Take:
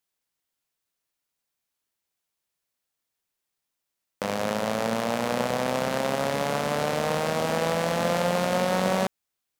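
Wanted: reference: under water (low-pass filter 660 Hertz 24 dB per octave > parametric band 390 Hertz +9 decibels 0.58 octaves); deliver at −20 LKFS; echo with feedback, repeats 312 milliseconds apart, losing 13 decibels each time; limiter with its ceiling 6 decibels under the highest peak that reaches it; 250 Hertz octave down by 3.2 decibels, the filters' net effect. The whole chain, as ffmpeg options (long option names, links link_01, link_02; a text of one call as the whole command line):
ffmpeg -i in.wav -af "equalizer=frequency=250:width_type=o:gain=-7,alimiter=limit=-15.5dB:level=0:latency=1,lowpass=frequency=660:width=0.5412,lowpass=frequency=660:width=1.3066,equalizer=frequency=390:width_type=o:width=0.58:gain=9,aecho=1:1:312|624|936:0.224|0.0493|0.0108,volume=10.5dB" out.wav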